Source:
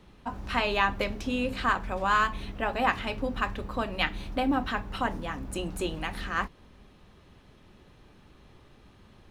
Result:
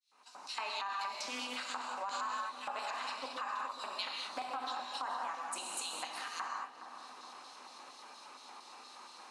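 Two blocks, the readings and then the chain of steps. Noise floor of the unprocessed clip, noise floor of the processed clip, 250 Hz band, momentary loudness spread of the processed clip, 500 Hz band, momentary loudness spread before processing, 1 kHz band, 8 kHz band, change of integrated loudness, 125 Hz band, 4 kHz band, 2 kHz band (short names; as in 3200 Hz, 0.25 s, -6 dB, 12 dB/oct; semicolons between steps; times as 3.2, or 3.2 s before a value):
-56 dBFS, -55 dBFS, -22.5 dB, 14 LU, -15.5 dB, 9 LU, -8.0 dB, +3.0 dB, -10.0 dB, under -35 dB, -4.5 dB, -12.5 dB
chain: opening faded in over 0.91 s; LFO high-pass square 4.3 Hz 950–4000 Hz; speaker cabinet 140–9200 Hz, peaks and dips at 250 Hz +8 dB, 1800 Hz -6 dB, 3300 Hz -10 dB; non-linear reverb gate 0.25 s flat, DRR 1.5 dB; limiter -21 dBFS, peak gain reduction 13 dB; compressor 2:1, threshold -58 dBFS, peak gain reduction 17 dB; high shelf 6000 Hz +12 dB; on a send: darkening echo 0.416 s, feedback 80%, low-pass 1200 Hz, level -9 dB; on the sum: Doppler distortion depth 0.16 ms; gain +7 dB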